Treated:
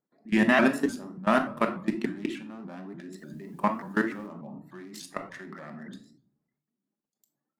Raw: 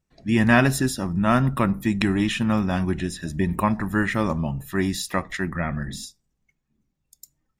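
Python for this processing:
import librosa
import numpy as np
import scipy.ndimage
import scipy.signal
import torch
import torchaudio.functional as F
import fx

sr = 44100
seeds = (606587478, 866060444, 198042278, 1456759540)

y = fx.wiener(x, sr, points=15)
y = scipy.signal.sosfilt(scipy.signal.butter(4, 220.0, 'highpass', fs=sr, output='sos'), y)
y = fx.hum_notches(y, sr, base_hz=60, count=6)
y = fx.level_steps(y, sr, step_db=22)
y = fx.quant_dither(y, sr, seeds[0], bits=12, dither='triangular', at=(3.17, 4.26), fade=0.02)
y = fx.room_shoebox(y, sr, seeds[1], volume_m3=680.0, walls='furnished', distance_m=1.3)
y = fx.vibrato_shape(y, sr, shape='saw_up', rate_hz=3.4, depth_cents=160.0)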